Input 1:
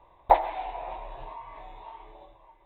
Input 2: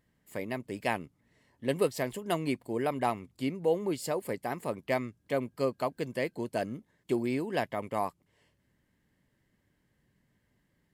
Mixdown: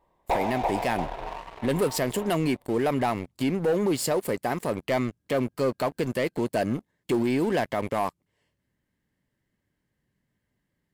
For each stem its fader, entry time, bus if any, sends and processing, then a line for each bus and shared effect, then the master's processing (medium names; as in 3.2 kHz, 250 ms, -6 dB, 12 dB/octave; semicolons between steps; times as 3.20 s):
-7.5 dB, 0.00 s, no send, echo send -8 dB, peaking EQ 400 Hz +7.5 dB 1.2 oct
+1.0 dB, 0.00 s, no send, no echo send, none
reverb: none
echo: feedback delay 339 ms, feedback 22%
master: waveshaping leveller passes 3; peak limiter -18 dBFS, peak gain reduction 9 dB